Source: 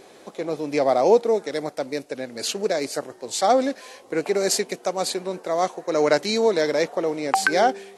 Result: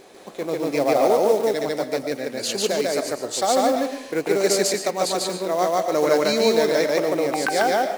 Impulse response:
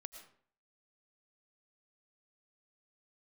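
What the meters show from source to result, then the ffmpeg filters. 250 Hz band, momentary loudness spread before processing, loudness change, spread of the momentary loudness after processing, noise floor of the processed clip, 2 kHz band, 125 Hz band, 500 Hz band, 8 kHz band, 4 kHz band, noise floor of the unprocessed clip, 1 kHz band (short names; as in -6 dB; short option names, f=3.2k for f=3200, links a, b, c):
+2.5 dB, 11 LU, +1.5 dB, 8 LU, -39 dBFS, 0.0 dB, +2.0 dB, +1.5 dB, +2.5 dB, +2.5 dB, -49 dBFS, +0.5 dB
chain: -filter_complex "[0:a]acrusher=bits=5:mode=log:mix=0:aa=0.000001,alimiter=limit=-11.5dB:level=0:latency=1:release=182,asplit=2[a][b];[1:a]atrim=start_sample=2205,adelay=146[c];[b][c]afir=irnorm=-1:irlink=0,volume=5.5dB[d];[a][d]amix=inputs=2:normalize=0"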